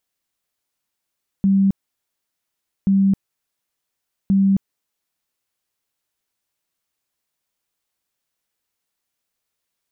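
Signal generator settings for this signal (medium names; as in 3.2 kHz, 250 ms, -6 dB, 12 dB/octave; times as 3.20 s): tone bursts 195 Hz, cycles 52, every 1.43 s, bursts 3, -12 dBFS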